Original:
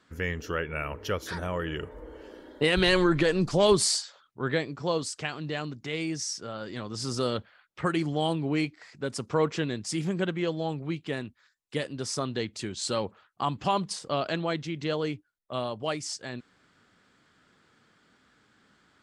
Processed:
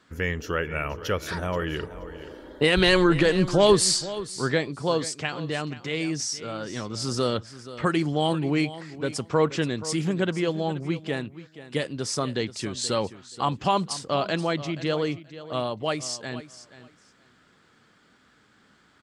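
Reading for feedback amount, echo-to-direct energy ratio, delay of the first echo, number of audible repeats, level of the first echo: 18%, −15.0 dB, 478 ms, 2, −15.0 dB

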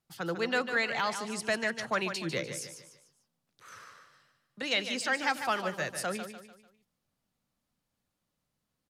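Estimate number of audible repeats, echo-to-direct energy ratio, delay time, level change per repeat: 4, −8.0 dB, 148 ms, −8.0 dB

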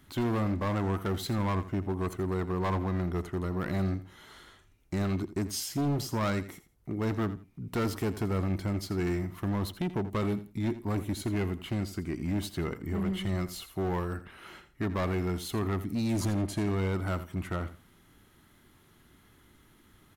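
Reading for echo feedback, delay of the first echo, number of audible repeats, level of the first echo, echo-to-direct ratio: 21%, 83 ms, 2, −14.0 dB, −14.0 dB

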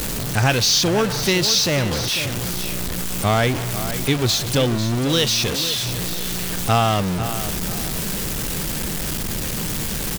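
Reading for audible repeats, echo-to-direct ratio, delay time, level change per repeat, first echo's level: 2, −10.5 dB, 496 ms, −9.5 dB, −11.0 dB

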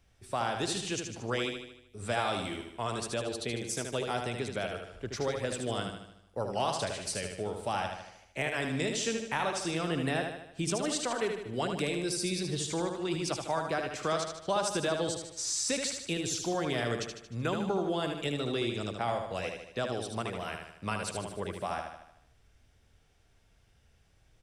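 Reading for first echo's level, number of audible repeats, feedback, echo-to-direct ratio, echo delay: −5.5 dB, 6, 52%, −4.0 dB, 76 ms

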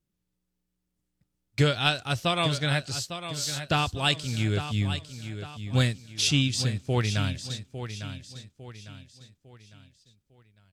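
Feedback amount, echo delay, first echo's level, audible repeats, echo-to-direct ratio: 40%, 853 ms, −10.5 dB, 4, −9.5 dB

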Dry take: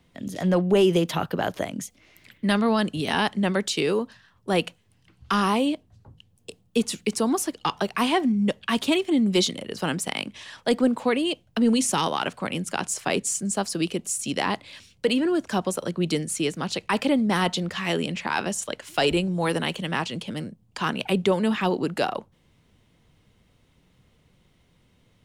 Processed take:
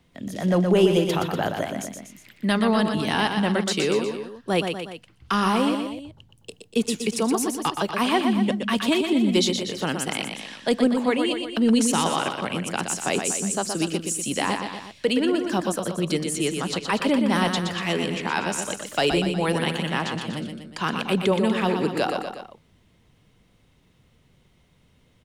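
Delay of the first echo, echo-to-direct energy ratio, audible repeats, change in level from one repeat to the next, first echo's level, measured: 121 ms, −4.5 dB, 3, −5.0 dB, −6.0 dB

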